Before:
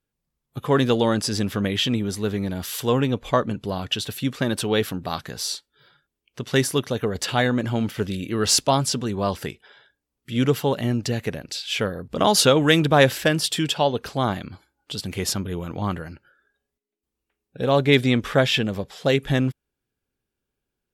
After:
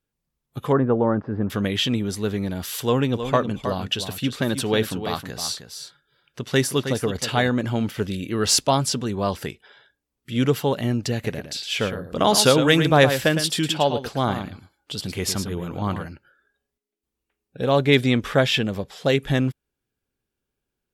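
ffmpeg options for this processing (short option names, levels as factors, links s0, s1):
-filter_complex "[0:a]asettb=1/sr,asplit=3[s0][s1][s2];[s0]atrim=end=0.724[s3];[s1]atrim=start=0.72:end=1.5,asetpts=PTS-STARTPTS,afade=t=in:d=0.004:c=qsin,afade=t=out:st=0.776:d=0.004:c=qsin,lowpass=f=1400:w=0.5412,lowpass=f=1400:w=1.3066[s4];[s2]atrim=start=1.496[s5];[s3][s4]acrossfade=d=0.004:c1=hsin:c2=qsin[s6];[s6][s5]acrossfade=d=0.004:c1=qsin:c2=hsin,asettb=1/sr,asplit=3[s7][s8][s9];[s7]atrim=end=2.824[s10];[s8]atrim=start=2.82:end=7.52,asetpts=PTS-STARTPTS,afade=t=in:d=0.004:c=qsin,afade=t=out:st=4.696:d=0.004:c=qsin,aecho=1:1:316:0.355,atrim=end_sample=207270[s11];[s9]atrim=start=7.516[s12];[s10][s11]acrossfade=d=0.004:c1=hsin:c2=qsin[s13];[s13][s12]acrossfade=d=0.004:c1=qsin:c2=hsin,asettb=1/sr,asplit=3[s14][s15][s16];[s14]atrim=end=11.134[s17];[s15]atrim=start=11.13:end=16.06,asetpts=PTS-STARTPTS,afade=t=in:d=0.004:c=qsin,afade=t=out:st=4.926:d=0.004:c=qsin,aecho=1:1:110:0.355,atrim=end_sample=217413[s18];[s16]atrim=start=16.056[s19];[s17][s18]acrossfade=d=0.004:c1=hsin:c2=qsin[s20];[s20][s19]acrossfade=d=0.004:c1=qsin:c2=hsin"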